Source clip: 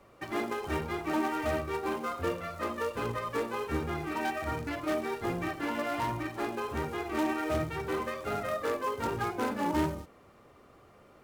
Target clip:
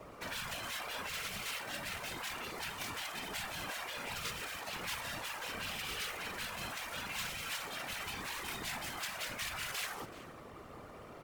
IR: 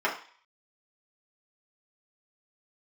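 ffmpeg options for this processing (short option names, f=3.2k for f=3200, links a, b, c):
-filter_complex "[0:a]afftfilt=real='re*lt(hypot(re,im),0.0224)':imag='im*lt(hypot(re,im),0.0224)':win_size=1024:overlap=0.75,asplit=2[a][b];[b]adelay=379,volume=-14dB,highshelf=f=4k:g=-8.53[c];[a][c]amix=inputs=2:normalize=0,afftfilt=real='hypot(re,im)*cos(2*PI*random(0))':imag='hypot(re,im)*sin(2*PI*random(1))':win_size=512:overlap=0.75,volume=12.5dB"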